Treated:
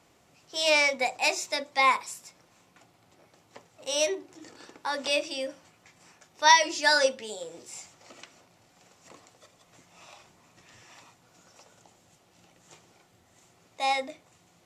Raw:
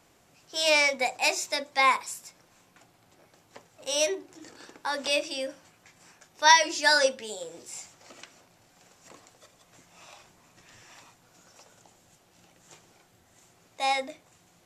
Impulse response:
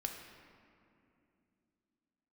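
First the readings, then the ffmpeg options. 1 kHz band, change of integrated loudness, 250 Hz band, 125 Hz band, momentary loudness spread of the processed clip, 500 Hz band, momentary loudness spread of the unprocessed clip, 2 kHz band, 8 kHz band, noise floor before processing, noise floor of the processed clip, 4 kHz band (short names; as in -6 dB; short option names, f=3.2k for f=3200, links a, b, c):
0.0 dB, -0.5 dB, 0.0 dB, n/a, 21 LU, 0.0 dB, 20 LU, -0.5 dB, -1.5 dB, -63 dBFS, -63 dBFS, -1.0 dB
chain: -af "highpass=45,highshelf=f=10k:g=-7,bandreject=f=1.6k:w=14"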